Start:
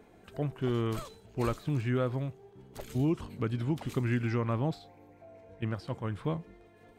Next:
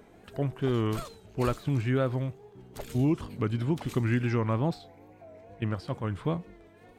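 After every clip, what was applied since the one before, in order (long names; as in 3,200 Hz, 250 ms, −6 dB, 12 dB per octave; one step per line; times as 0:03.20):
tape wow and flutter 81 cents
level +3 dB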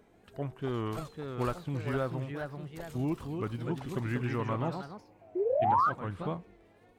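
sound drawn into the spectrogram rise, 0:05.35–0:05.90, 340–1,300 Hz −24 dBFS
dynamic equaliser 960 Hz, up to +6 dB, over −40 dBFS, Q 0.88
delay with pitch and tempo change per echo 621 ms, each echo +2 semitones, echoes 2, each echo −6 dB
level −7.5 dB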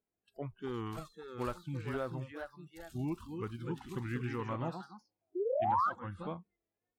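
noise reduction from a noise print of the clip's start 26 dB
level −4.5 dB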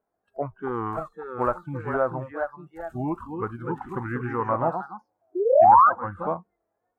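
drawn EQ curve 160 Hz 0 dB, 400 Hz +4 dB, 670 Hz +13 dB, 1,500 Hz +8 dB, 3,300 Hz −17 dB, 5,200 Hz −18 dB, 7,400 Hz −12 dB
level +5.5 dB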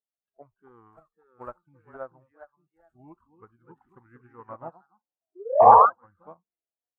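sound drawn into the spectrogram noise, 0:05.60–0:05.86, 430–1,200 Hz −17 dBFS
expander for the loud parts 2.5 to 1, over −30 dBFS
level +2 dB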